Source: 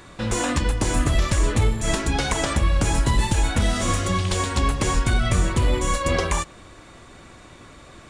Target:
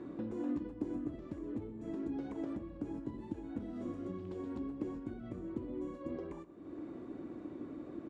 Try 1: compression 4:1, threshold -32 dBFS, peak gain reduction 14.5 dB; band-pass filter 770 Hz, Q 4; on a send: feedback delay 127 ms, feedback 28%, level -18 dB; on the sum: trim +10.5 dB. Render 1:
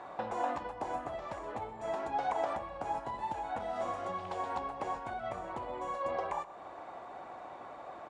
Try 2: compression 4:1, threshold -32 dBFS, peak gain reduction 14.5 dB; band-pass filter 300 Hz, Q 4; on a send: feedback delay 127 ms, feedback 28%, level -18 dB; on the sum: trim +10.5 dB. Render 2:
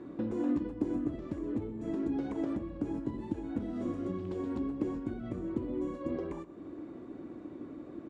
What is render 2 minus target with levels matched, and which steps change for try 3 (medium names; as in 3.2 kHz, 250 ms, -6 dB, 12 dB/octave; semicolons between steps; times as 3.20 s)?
compression: peak gain reduction -6 dB
change: compression 4:1, threshold -40 dBFS, peak gain reduction 20.5 dB